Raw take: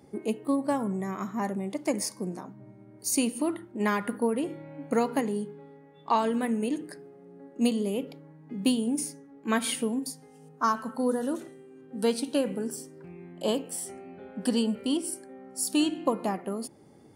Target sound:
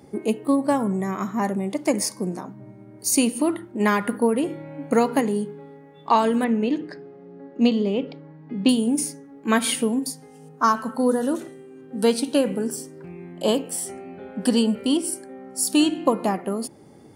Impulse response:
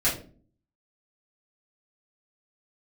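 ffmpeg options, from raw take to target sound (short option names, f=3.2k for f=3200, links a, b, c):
-filter_complex "[0:a]asettb=1/sr,asplit=3[a][b][c];[a]atrim=end=6.444[d];[b]atrim=start=6.44:end=8.69,asetpts=PTS-STARTPTS,afade=t=in:d=0.004:c=qsin,afade=t=out:st=2.246:d=0.004:c=qsin,lowpass=f=5k:w=0.5412,lowpass=f=5k:w=1.3066[e];[c]atrim=start=8.686[f];[d][e]acrossfade=d=0.004:c1=hsin:c2=qsin[g];[g][f]acrossfade=d=0.004:c1=qsin:c2=hsin,volume=6.5dB"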